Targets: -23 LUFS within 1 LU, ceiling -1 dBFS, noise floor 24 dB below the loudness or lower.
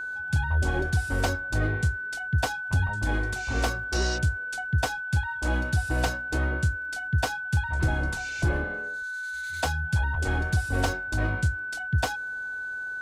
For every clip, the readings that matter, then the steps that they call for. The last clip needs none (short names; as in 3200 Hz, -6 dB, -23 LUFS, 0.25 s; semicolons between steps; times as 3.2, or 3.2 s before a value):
ticks 27/s; steady tone 1500 Hz; tone level -31 dBFS; loudness -28.0 LUFS; peak -15.0 dBFS; loudness target -23.0 LUFS
-> de-click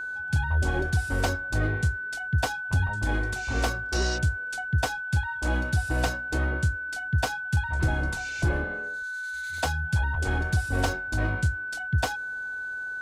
ticks 0/s; steady tone 1500 Hz; tone level -31 dBFS
-> notch 1500 Hz, Q 30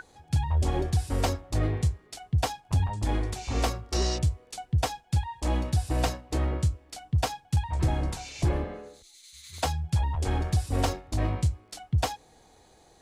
steady tone none; loudness -29.0 LUFS; peak -15.5 dBFS; loudness target -23.0 LUFS
-> gain +6 dB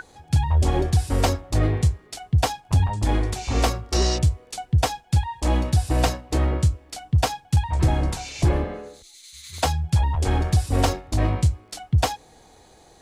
loudness -23.0 LUFS; peak -9.5 dBFS; noise floor -53 dBFS